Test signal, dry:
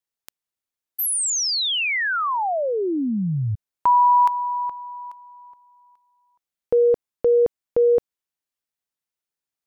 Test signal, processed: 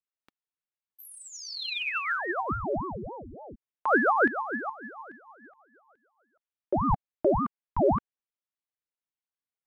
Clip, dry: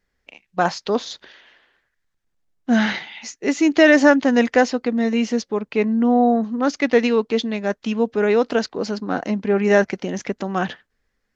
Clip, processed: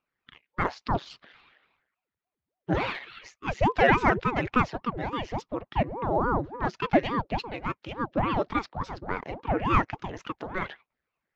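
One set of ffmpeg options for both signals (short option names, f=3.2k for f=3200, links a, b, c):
-filter_complex "[0:a]acrossover=split=240 3800:gain=0.126 1 0.126[a][b][c];[a][b][c]amix=inputs=3:normalize=0,aphaser=in_gain=1:out_gain=1:delay=3:decay=0.38:speed=1.1:type=triangular,aeval=exprs='val(0)*sin(2*PI*410*n/s+410*0.85/3.5*sin(2*PI*3.5*n/s))':c=same,volume=-5dB"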